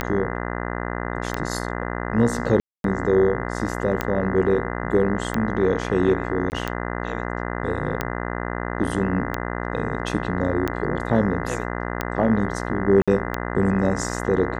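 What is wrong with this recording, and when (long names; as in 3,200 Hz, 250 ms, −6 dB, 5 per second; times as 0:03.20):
mains buzz 60 Hz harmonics 34 −28 dBFS
scratch tick 45 rpm −9 dBFS
0:02.60–0:02.84: drop-out 242 ms
0:06.50–0:06.52: drop-out 19 ms
0:13.02–0:13.08: drop-out 56 ms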